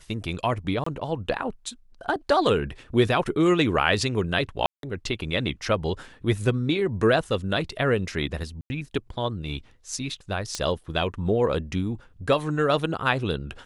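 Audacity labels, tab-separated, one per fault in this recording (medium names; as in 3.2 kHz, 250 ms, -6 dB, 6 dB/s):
0.840000	0.860000	dropout 24 ms
4.660000	4.830000	dropout 172 ms
8.610000	8.700000	dropout 90 ms
10.550000	10.550000	pop -14 dBFS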